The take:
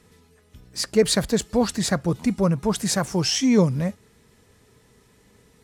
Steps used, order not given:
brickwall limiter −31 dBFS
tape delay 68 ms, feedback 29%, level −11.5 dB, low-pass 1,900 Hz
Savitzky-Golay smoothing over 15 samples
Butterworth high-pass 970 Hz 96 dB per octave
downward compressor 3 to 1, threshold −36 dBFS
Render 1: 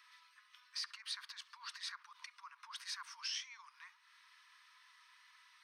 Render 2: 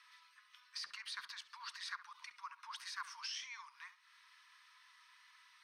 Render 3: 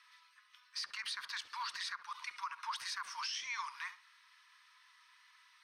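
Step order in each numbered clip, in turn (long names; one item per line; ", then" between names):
tape delay, then downward compressor, then Savitzky-Golay smoothing, then brickwall limiter, then Butterworth high-pass
downward compressor, then Butterworth high-pass, then tape delay, then brickwall limiter, then Savitzky-Golay smoothing
Butterworth high-pass, then tape delay, then Savitzky-Golay smoothing, then downward compressor, then brickwall limiter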